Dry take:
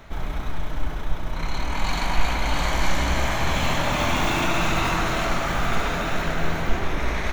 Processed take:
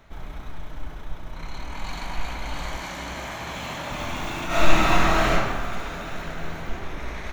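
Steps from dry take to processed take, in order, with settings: 2.77–3.91 HPF 130 Hz 6 dB/oct; 4.47–5.32 reverb throw, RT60 1.4 s, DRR -10.5 dB; gain -8 dB

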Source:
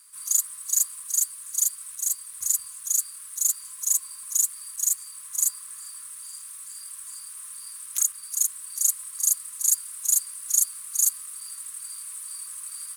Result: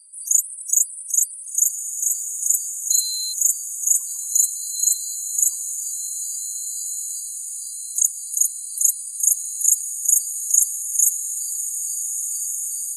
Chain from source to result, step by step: bell 3100 Hz -6.5 dB 0.54 oct; loudest bins only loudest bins 64; 2.9–3.32 whine 4100 Hz -32 dBFS; diffused feedback echo 1.582 s, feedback 50%, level -7 dB; gain +6.5 dB

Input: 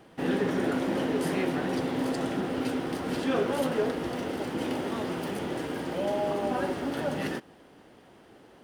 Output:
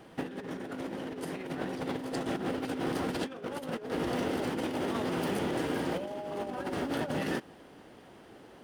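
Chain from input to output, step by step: negative-ratio compressor -32 dBFS, ratio -0.5; gain -1.5 dB

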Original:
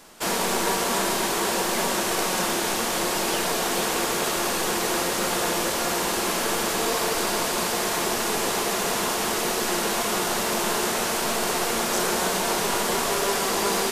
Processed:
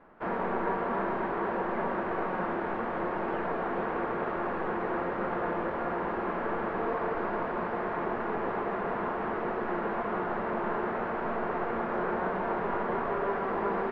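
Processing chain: LPF 1700 Hz 24 dB/oct; gain -4.5 dB

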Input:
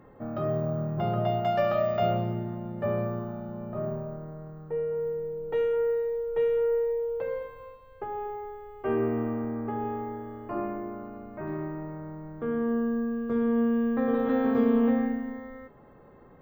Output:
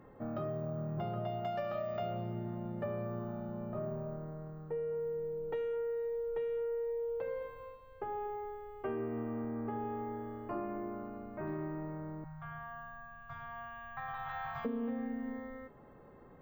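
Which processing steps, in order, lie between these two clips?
12.24–14.65 Chebyshev band-stop 160–700 Hz, order 4; compressor 6:1, threshold -31 dBFS, peak gain reduction 11.5 dB; gain -3.5 dB

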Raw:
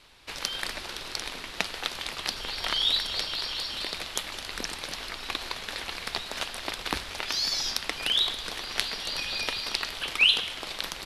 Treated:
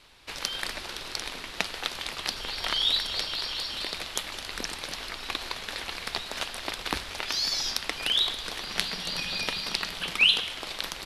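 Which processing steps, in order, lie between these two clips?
8.62–10.36 bell 180 Hz +12 dB 0.5 oct

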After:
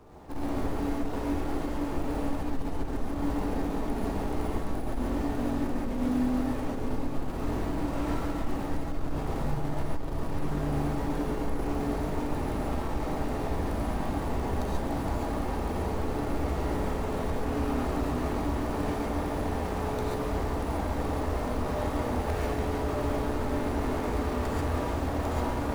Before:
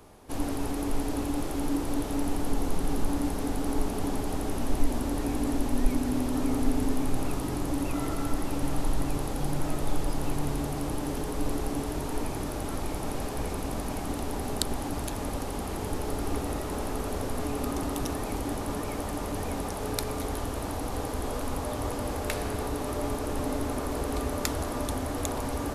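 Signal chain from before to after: median filter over 15 samples; in parallel at -2 dB: negative-ratio compressor -29 dBFS; on the sum: hard clip -25.5 dBFS, distortion -8 dB; non-linear reverb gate 0.16 s rising, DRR -4.5 dB; gain -6.5 dB

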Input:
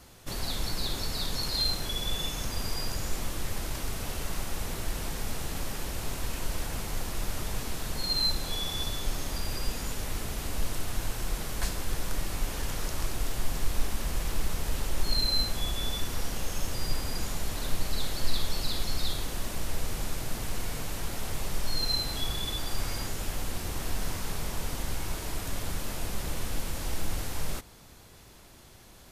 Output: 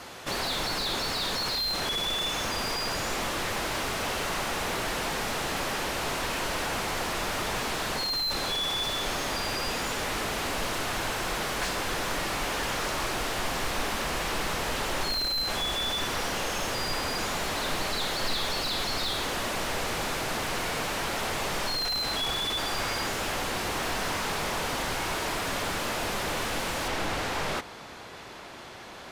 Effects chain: high shelf 7000 Hz -2 dB, from 26.88 s -11 dB; overdrive pedal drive 29 dB, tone 2500 Hz, clips at -12 dBFS; gain -5.5 dB

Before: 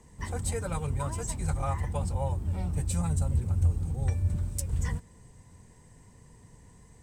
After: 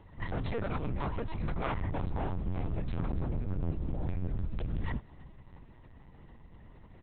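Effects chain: overloaded stage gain 31.5 dB; feedback echo 0.33 s, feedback 50%, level -24 dB; LPC vocoder at 8 kHz pitch kept; gain +1.5 dB

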